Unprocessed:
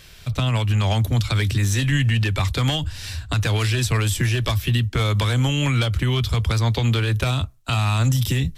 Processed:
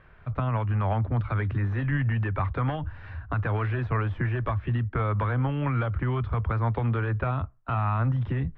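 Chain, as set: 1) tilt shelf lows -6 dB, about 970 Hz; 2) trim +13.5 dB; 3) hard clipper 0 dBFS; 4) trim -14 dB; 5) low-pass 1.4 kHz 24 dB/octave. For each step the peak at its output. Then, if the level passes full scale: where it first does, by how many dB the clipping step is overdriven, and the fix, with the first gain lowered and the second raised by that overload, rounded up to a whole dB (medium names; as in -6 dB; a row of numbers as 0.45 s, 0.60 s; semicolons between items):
-7.5 dBFS, +6.0 dBFS, 0.0 dBFS, -14.0 dBFS, -15.0 dBFS; step 2, 6.0 dB; step 2 +7.5 dB, step 4 -8 dB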